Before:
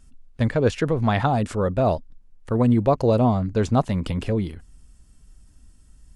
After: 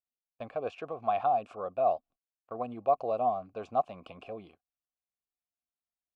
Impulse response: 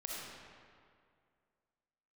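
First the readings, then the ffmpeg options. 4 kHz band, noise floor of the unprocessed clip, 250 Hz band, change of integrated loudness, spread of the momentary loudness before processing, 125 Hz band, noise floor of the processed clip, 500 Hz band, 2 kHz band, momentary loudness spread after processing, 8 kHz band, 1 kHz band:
under -15 dB, -53 dBFS, -23.5 dB, -10.0 dB, 8 LU, -30.0 dB, under -85 dBFS, -9.0 dB, -17.0 dB, 16 LU, n/a, -3.0 dB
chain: -filter_complex "[0:a]asplit=3[a][b][c];[a]bandpass=f=730:t=q:w=8,volume=0dB[d];[b]bandpass=f=1.09k:t=q:w=8,volume=-6dB[e];[c]bandpass=f=2.44k:t=q:w=8,volume=-9dB[f];[d][e][f]amix=inputs=3:normalize=0,agate=range=-25dB:threshold=-56dB:ratio=16:detection=peak"

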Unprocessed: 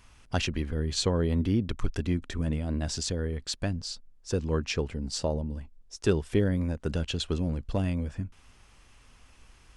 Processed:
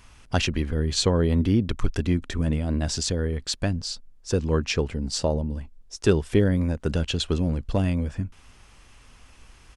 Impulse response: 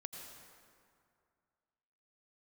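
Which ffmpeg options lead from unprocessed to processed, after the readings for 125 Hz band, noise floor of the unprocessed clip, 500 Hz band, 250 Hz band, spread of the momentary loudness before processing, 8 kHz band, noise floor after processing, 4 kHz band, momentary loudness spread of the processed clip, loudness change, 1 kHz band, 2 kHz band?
+5.0 dB, -58 dBFS, +5.0 dB, +5.0 dB, 9 LU, +5.0 dB, -53 dBFS, +5.0 dB, 9 LU, +5.0 dB, +5.0 dB, +5.0 dB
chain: -af "aresample=32000,aresample=44100,volume=5dB"

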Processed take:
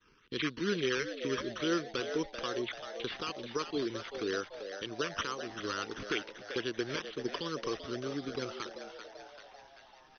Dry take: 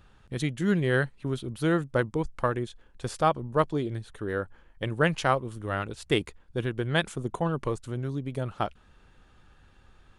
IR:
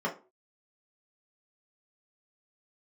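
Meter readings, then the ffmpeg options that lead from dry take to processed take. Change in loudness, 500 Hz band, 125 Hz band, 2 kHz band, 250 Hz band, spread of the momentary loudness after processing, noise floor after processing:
-7.0 dB, -6.0 dB, -17.0 dB, -6.0 dB, -7.0 dB, 11 LU, -59 dBFS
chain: -filter_complex "[0:a]highshelf=f=2.6k:t=q:w=3:g=7,asplit=2[a][b];[b]acompressor=threshold=-37dB:ratio=6,volume=2.5dB[c];[a][c]amix=inputs=2:normalize=0,acrossover=split=300 3300:gain=0.0794 1 0.0631[d][e][f];[d][e][f]amix=inputs=3:normalize=0,agate=range=-33dB:threshold=-51dB:ratio=3:detection=peak,alimiter=limit=-19.5dB:level=0:latency=1:release=219,acrusher=samples=9:mix=1:aa=0.000001:lfo=1:lforange=5.4:lforate=2.2,asuperstop=centerf=700:order=4:qfactor=1,asplit=8[g][h][i][j][k][l][m][n];[h]adelay=389,afreqshift=100,volume=-9dB[o];[i]adelay=778,afreqshift=200,volume=-13.6dB[p];[j]adelay=1167,afreqshift=300,volume=-18.2dB[q];[k]adelay=1556,afreqshift=400,volume=-22.7dB[r];[l]adelay=1945,afreqshift=500,volume=-27.3dB[s];[m]adelay=2334,afreqshift=600,volume=-31.9dB[t];[n]adelay=2723,afreqshift=700,volume=-36.5dB[u];[g][o][p][q][r][s][t][u]amix=inputs=8:normalize=0" -ar 44100 -c:a ac3 -b:a 48k

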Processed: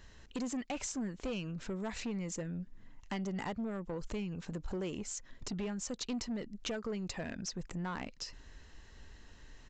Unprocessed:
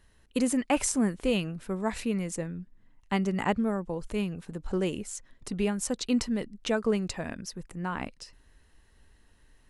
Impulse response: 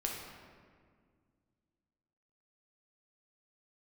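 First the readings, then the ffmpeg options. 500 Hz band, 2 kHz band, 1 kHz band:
-10.5 dB, -8.5 dB, -10.5 dB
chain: -af "highshelf=f=6.3k:g=7,acompressor=threshold=-42dB:ratio=3,aresample=16000,asoftclip=type=tanh:threshold=-38dB,aresample=44100,volume=6dB"

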